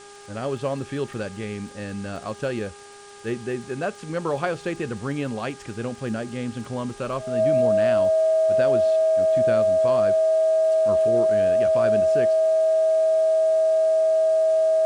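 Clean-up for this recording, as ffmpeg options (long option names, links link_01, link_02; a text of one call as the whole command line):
ffmpeg -i in.wav -af "adeclick=threshold=4,bandreject=frequency=405.7:width_type=h:width=4,bandreject=frequency=811.4:width_type=h:width=4,bandreject=frequency=1217.1:width_type=h:width=4,bandreject=frequency=1622.8:width_type=h:width=4,bandreject=frequency=640:width=30,afftdn=noise_reduction=28:noise_floor=-41" out.wav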